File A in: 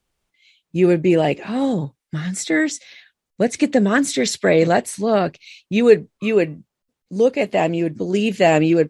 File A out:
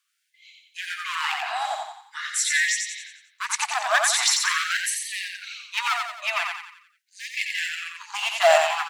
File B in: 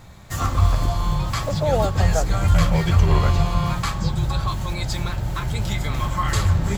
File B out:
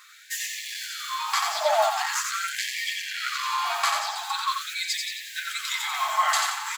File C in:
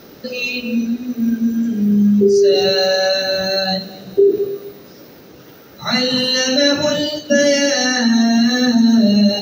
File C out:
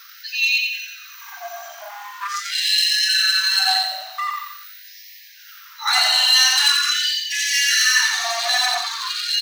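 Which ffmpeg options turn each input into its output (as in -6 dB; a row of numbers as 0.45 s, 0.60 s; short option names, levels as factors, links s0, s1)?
-af "asoftclip=type=hard:threshold=0.188,aecho=1:1:89|178|267|356|445|534:0.631|0.284|0.128|0.0575|0.0259|0.0116,afftfilt=real='re*gte(b*sr/1024,600*pow(1700/600,0.5+0.5*sin(2*PI*0.44*pts/sr)))':imag='im*gte(b*sr/1024,600*pow(1700/600,0.5+0.5*sin(2*PI*0.44*pts/sr)))':win_size=1024:overlap=0.75,volume=1.41"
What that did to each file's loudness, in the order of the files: -5.5 LU, -4.5 LU, -1.5 LU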